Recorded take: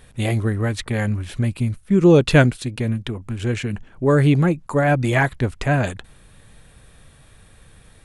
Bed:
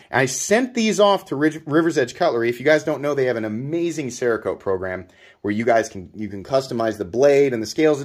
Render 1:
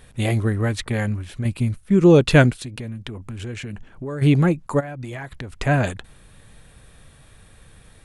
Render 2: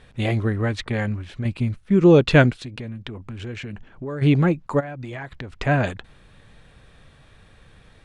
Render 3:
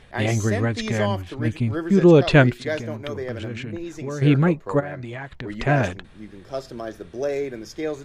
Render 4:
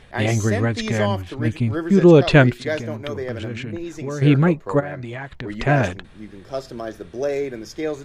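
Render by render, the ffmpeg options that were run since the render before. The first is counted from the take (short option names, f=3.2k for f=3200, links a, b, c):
-filter_complex "[0:a]asplit=3[a][b][c];[a]afade=t=out:st=2.53:d=0.02[d];[b]acompressor=threshold=-29dB:ratio=4:attack=3.2:release=140:knee=1:detection=peak,afade=t=in:st=2.53:d=0.02,afade=t=out:st=4.21:d=0.02[e];[c]afade=t=in:st=4.21:d=0.02[f];[d][e][f]amix=inputs=3:normalize=0,asplit=3[g][h][i];[g]afade=t=out:st=4.79:d=0.02[j];[h]acompressor=threshold=-28dB:ratio=20:attack=3.2:release=140:knee=1:detection=peak,afade=t=in:st=4.79:d=0.02,afade=t=out:st=5.59:d=0.02[k];[i]afade=t=in:st=5.59:d=0.02[l];[j][k][l]amix=inputs=3:normalize=0,asplit=2[m][n];[m]atrim=end=1.45,asetpts=PTS-STARTPTS,afade=t=out:st=0.86:d=0.59:silence=0.473151[o];[n]atrim=start=1.45,asetpts=PTS-STARTPTS,afade=t=in:d=0.004:c=hsin:silence=0.473151[p];[o][p]concat=n=2:v=0:a=1"
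-af "lowpass=4.8k,lowshelf=f=150:g=-3"
-filter_complex "[1:a]volume=-11dB[a];[0:a][a]amix=inputs=2:normalize=0"
-af "volume=2dB,alimiter=limit=-1dB:level=0:latency=1"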